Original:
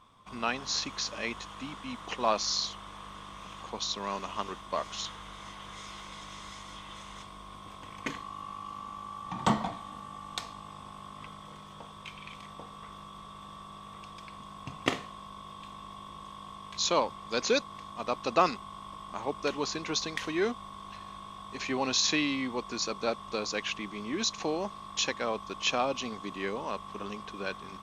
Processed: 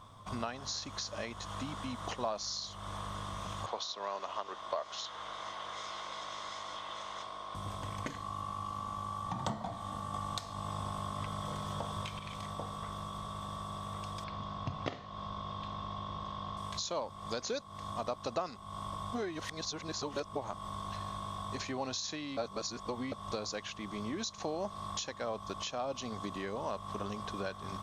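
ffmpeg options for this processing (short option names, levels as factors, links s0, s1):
-filter_complex "[0:a]asettb=1/sr,asplit=3[s0][s1][s2];[s0]atrim=end=3.664[s3];[s1]atrim=start=3.66:end=7.55,asetpts=PTS-STARTPTS,afade=t=in:d=0.004:c=qsin,afade=t=out:st=3.886:d=0.004:c=qsin,acrossover=split=330 5900:gain=0.0794 1 0.141[s4][s5][s6];[s4][s5][s6]amix=inputs=3:normalize=0[s7];[s2]atrim=start=7.546[s8];[s3][s7]acrossfade=d=0.004:c1=hsin:c2=qsin[s9];[s9][s8]acrossfade=d=0.004:c1=qsin:c2=hsin,asettb=1/sr,asplit=3[s10][s11][s12];[s10]atrim=end=14.244[s13];[s11]atrim=start=14.24:end=16.57,asetpts=PTS-STARTPTS,afade=t=in:d=0.004:c=qsin,afade=t=out:st=2.326:d=0.004:c=qsin,lowpass=f=5200:w=0.5412,lowpass=f=5200:w=1.3066[s14];[s12]atrim=start=16.566[s15];[s13][s14]acrossfade=d=0.004:c1=hsin:c2=qsin[s16];[s16][s15]acrossfade=d=0.004:c1=qsin:c2=hsin,asplit=7[s17][s18][s19][s20][s21][s22][s23];[s17]atrim=end=10.142[s24];[s18]atrim=start=10.138:end=12.192,asetpts=PTS-STARTPTS,volume=2[s25];[s19]atrim=start=12.188:end=19.012[s26];[s20]atrim=start=19.008:end=20.662,asetpts=PTS-STARTPTS,areverse[s27];[s21]atrim=start=20.658:end=22.372[s28];[s22]atrim=start=22.368:end=23.122,asetpts=PTS-STARTPTS,areverse[s29];[s23]atrim=start=23.118[s30];[s24][s25]acrossfade=d=0.004:c1=hsin:c2=hsin[s31];[s31][s26]acrossfade=d=0.004:c1=hsin:c2=hsin[s32];[s32][s27]acrossfade=d=0.004:c1=hsin:c2=hsin[s33];[s33][s28]acrossfade=d=0.004:c1=hsin:c2=hsin[s34];[s34][s29]acrossfade=d=0.004:c1=hsin:c2=hsin[s35];[s35][s30]acrossfade=d=0.004:c1=hsin:c2=hsin,equalizer=f=510:w=0.52:g=-5,acompressor=threshold=0.00708:ratio=6,equalizer=f=100:t=o:w=0.67:g=9,equalizer=f=630:t=o:w=0.67:g=8,equalizer=f=2500:t=o:w=0.67:g=-8,volume=2.11"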